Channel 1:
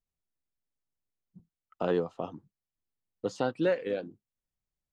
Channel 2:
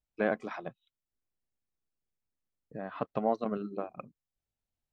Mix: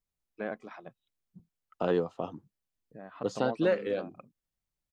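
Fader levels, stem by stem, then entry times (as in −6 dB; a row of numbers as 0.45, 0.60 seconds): +0.5, −7.0 decibels; 0.00, 0.20 seconds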